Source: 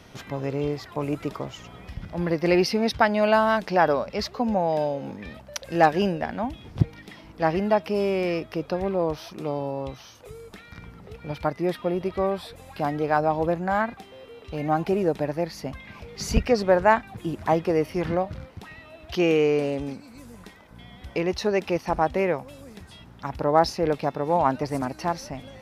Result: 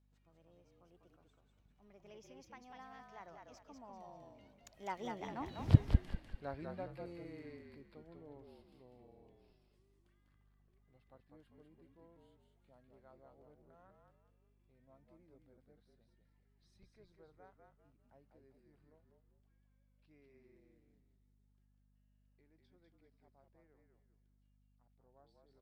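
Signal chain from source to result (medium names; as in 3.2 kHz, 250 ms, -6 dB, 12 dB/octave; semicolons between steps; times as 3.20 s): Doppler pass-by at 5.68 s, 55 m/s, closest 3.1 m; frequency-shifting echo 197 ms, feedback 35%, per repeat -45 Hz, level -4 dB; hum 50 Hz, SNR 28 dB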